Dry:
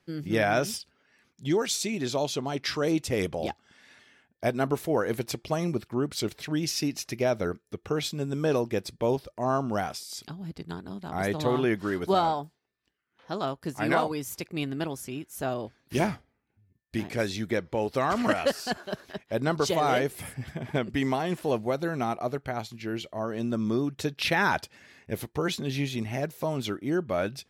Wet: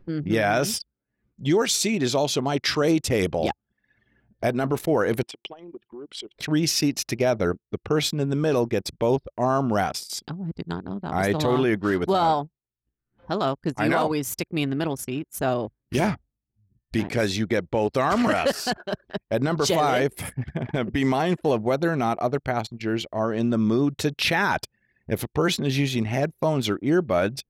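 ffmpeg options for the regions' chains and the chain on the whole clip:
ffmpeg -i in.wav -filter_complex "[0:a]asettb=1/sr,asplit=3[link_01][link_02][link_03];[link_01]atrim=end=5.234[link_04];[link_02]atrim=start=5.23:end=6.36,asetpts=PTS-STARTPTS,afade=type=in:duration=0.004:curve=qsin,afade=type=out:start_time=1.126:duration=0.004:curve=qsin,acompressor=threshold=-37dB:ratio=4:attack=3.2:release=140:knee=1:detection=peak,highpass=400,equalizer=frequency=600:width_type=q:width=4:gain=-8,equalizer=frequency=1300:width_type=q:width=4:gain=-5,equalizer=frequency=3100:width_type=q:width=4:gain=9,equalizer=frequency=4400:width_type=q:width=4:gain=-5,equalizer=frequency=6500:width_type=q:width=4:gain=-9,lowpass=frequency=8900:width=0.5412,lowpass=frequency=8900:width=1.3066[link_05];[link_03]atrim=start=6.356[link_06];[link_04][link_05]acrossfade=duration=0.004:curve1=hsin:curve2=qsin[link_07];[link_07][link_06]acrossfade=duration=0.004:curve1=qsin:curve2=hsin,anlmdn=0.251,acompressor=mode=upward:threshold=-41dB:ratio=2.5,alimiter=limit=-19.5dB:level=0:latency=1:release=18,volume=7dB" out.wav

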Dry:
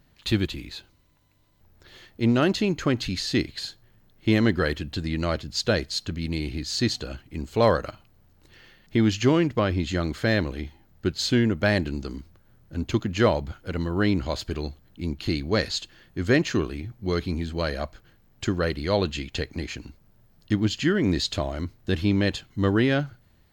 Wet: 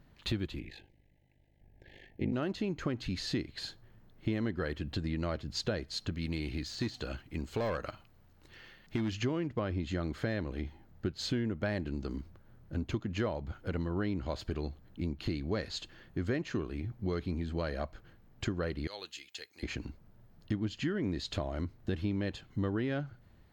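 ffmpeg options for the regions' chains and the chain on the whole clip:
ffmpeg -i in.wav -filter_complex "[0:a]asettb=1/sr,asplit=3[link_01][link_02][link_03];[link_01]atrim=end=0.594[link_04];[link_02]atrim=start=0.59:end=2.33,asetpts=PTS-STARTPTS,afade=type=in:duration=0.004:curve=qsin,afade=type=out:start_time=1.736:duration=0.004:curve=qsin,highshelf=frequency=3300:width_type=q:width=1.5:gain=-6.5,aeval=exprs='val(0)*sin(2*PI*25*n/s)':channel_layout=same,asuperstop=centerf=1200:order=20:qfactor=1.7[link_05];[link_03]atrim=start=2.326[link_06];[link_04][link_05]acrossfade=duration=0.004:curve1=hsin:curve2=qsin[link_07];[link_07][link_06]acrossfade=duration=0.004:curve1=qsin:curve2=hsin,asettb=1/sr,asplit=3[link_08][link_09][link_10];[link_08]atrim=end=6.124[link_11];[link_09]atrim=start=6.12:end=9.12,asetpts=PTS-STARTPTS,afade=type=in:duration=0.004:curve=qsin,afade=type=out:start_time=2.996:duration=0.004:curve=qsin,deesser=0.85,tiltshelf=frequency=1100:gain=-3.5,volume=19.5dB,asoftclip=hard,volume=-19.5dB[link_12];[link_10]atrim=start=9.116[link_13];[link_11][link_12]acrossfade=duration=0.004:curve1=hsin:curve2=qsin[link_14];[link_14][link_13]acrossfade=duration=0.004:curve1=qsin:curve2=hsin,asettb=1/sr,asplit=3[link_15][link_16][link_17];[link_15]atrim=end=18.874[link_18];[link_16]atrim=start=18.87:end=19.63,asetpts=PTS-STARTPTS,afade=type=in:duration=0.004:curve=qsin,afade=type=out:start_time=0.756:duration=0.004:curve=qsin,aderivative,aecho=1:1:2.4:0.3,atrim=end_sample=33516[link_19];[link_17]atrim=start=19.626[link_20];[link_18][link_19]acrossfade=duration=0.004:curve1=hsin:curve2=qsin[link_21];[link_21][link_20]acrossfade=duration=0.004:curve1=qsin:curve2=hsin,highshelf=frequency=3100:gain=-10,acompressor=threshold=-32dB:ratio=4" out.wav

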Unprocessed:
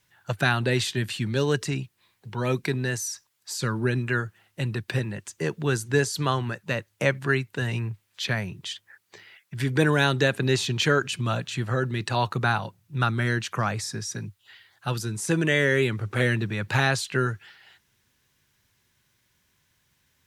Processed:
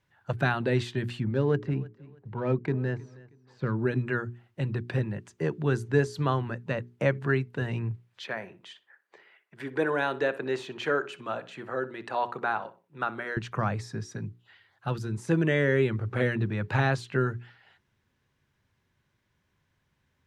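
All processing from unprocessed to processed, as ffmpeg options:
ffmpeg -i in.wav -filter_complex "[0:a]asettb=1/sr,asplit=3[link_01][link_02][link_03];[link_01]atrim=end=1.204[link_04];[link_02]atrim=start=1.2:end=3.79,asetpts=PTS-STARTPTS,afade=type=in:duration=0.004:curve=qsin,afade=type=out:start_time=2.586:duration=0.004:curve=qsin,highshelf=frequency=3100:gain=-10,adynamicsmooth=sensitivity=5:basefreq=2200,aecho=1:1:316|632:0.0891|0.0258,atrim=end_sample=114219[link_05];[link_03]atrim=start=3.786[link_06];[link_04][link_05]acrossfade=duration=0.004:curve1=hsin:curve2=qsin[link_07];[link_07][link_06]acrossfade=duration=0.004:curve1=qsin:curve2=hsin,asettb=1/sr,asplit=3[link_08][link_09][link_10];[link_08]atrim=end=8.244[link_11];[link_09]atrim=start=8.24:end=13.37,asetpts=PTS-STARTPTS,afade=type=in:duration=0.004:curve=qsin,afade=type=out:start_time=5.126:duration=0.004:curve=qsin,highpass=400,equalizer=frequency=5000:width_type=o:width=1.6:gain=-5.5,asplit=2[link_12][link_13];[link_13]adelay=62,lowpass=frequency=3200:poles=1,volume=-15.5dB,asplit=2[link_14][link_15];[link_15]adelay=62,lowpass=frequency=3200:poles=1,volume=0.32,asplit=2[link_16][link_17];[link_17]adelay=62,lowpass=frequency=3200:poles=1,volume=0.32[link_18];[link_12][link_14][link_16][link_18]amix=inputs=4:normalize=0,atrim=end_sample=226233[link_19];[link_10]atrim=start=13.366[link_20];[link_11][link_19]acrossfade=duration=0.004:curve1=hsin:curve2=qsin[link_21];[link_21][link_20]acrossfade=duration=0.004:curve1=qsin:curve2=hsin,lowpass=frequency=1100:poles=1,bandreject=frequency=60:width_type=h:width=6,bandreject=frequency=120:width_type=h:width=6,bandreject=frequency=180:width_type=h:width=6,bandreject=frequency=240:width_type=h:width=6,bandreject=frequency=300:width_type=h:width=6,bandreject=frequency=360:width_type=h:width=6,bandreject=frequency=420:width_type=h:width=6" out.wav

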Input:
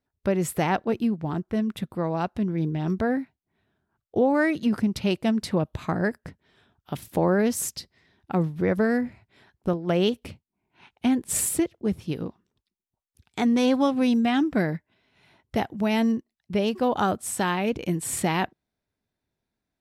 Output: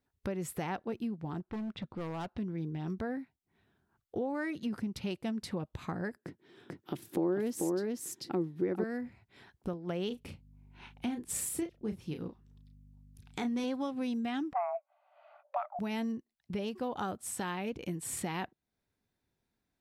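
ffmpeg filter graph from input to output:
ffmpeg -i in.wav -filter_complex "[0:a]asettb=1/sr,asplit=3[link_01][link_02][link_03];[link_01]atrim=end=1.404[link_04];[link_02]atrim=start=1.4:end=2.38,asetpts=PTS-STARTPTS,afade=type=in:duration=0.004:curve=qsin,afade=type=out:start_time=0.976:duration=0.004:curve=qsin,lowpass=frequency=4900:width=0.5412,lowpass=frequency=4900:width=1.3066,asoftclip=type=hard:threshold=-26.5dB[link_05];[link_03]atrim=start=2.376[link_06];[link_04][link_05]acrossfade=duration=0.004:curve1=hsin:curve2=qsin[link_07];[link_07][link_06]acrossfade=duration=0.004:curve1=qsin:curve2=hsin,asettb=1/sr,asplit=3[link_08][link_09][link_10];[link_08]atrim=end=6.164[link_11];[link_09]atrim=start=6.16:end=8.84,asetpts=PTS-STARTPTS,afade=type=in:duration=0.004:curve=qsin,afade=type=out:start_time=2.676:duration=0.004:curve=qsin,highpass=frequency=110:width=0.5412,highpass=frequency=110:width=1.3066,equalizer=frequency=340:width=2.6:gain=15,aecho=1:1:441:0.668,atrim=end_sample=118188[link_12];[link_10]atrim=start=8.836[link_13];[link_11][link_12]acrossfade=duration=0.004:curve1=hsin:curve2=qsin[link_14];[link_14][link_13]acrossfade=duration=0.004:curve1=qsin:curve2=hsin,asettb=1/sr,asplit=3[link_15][link_16][link_17];[link_15]atrim=end=10.074[link_18];[link_16]atrim=start=10.07:end=13.64,asetpts=PTS-STARTPTS,afade=type=in:duration=0.004:curve=qsin,afade=type=out:start_time=3.566:duration=0.004:curve=qsin,aeval=exprs='val(0)+0.00178*(sin(2*PI*50*n/s)+sin(2*PI*2*50*n/s)/2+sin(2*PI*3*50*n/s)/3+sin(2*PI*4*50*n/s)/4+sin(2*PI*5*50*n/s)/5)':channel_layout=same,asplit=2[link_19][link_20];[link_20]adelay=33,volume=-8dB[link_21];[link_19][link_21]amix=inputs=2:normalize=0,atrim=end_sample=157437[link_22];[link_17]atrim=start=13.636[link_23];[link_18][link_22]acrossfade=duration=0.004:curve1=hsin:curve2=qsin[link_24];[link_24][link_23]acrossfade=duration=0.004:curve1=qsin:curve2=hsin,asettb=1/sr,asplit=3[link_25][link_26][link_27];[link_25]atrim=end=14.534[link_28];[link_26]atrim=start=14.53:end=15.79,asetpts=PTS-STARTPTS,afade=type=in:duration=0.004:curve=qsin,afade=type=out:start_time=1.256:duration=0.004:curve=qsin,lowpass=1100,equalizer=frequency=120:width=0.75:gain=12.5,afreqshift=500[link_29];[link_27]atrim=start=15.786[link_30];[link_28][link_29]acrossfade=duration=0.004:curve1=hsin:curve2=qsin[link_31];[link_31][link_30]acrossfade=duration=0.004:curve1=qsin:curve2=hsin,bandreject=frequency=630:width=12,acompressor=threshold=-43dB:ratio=2" out.wav

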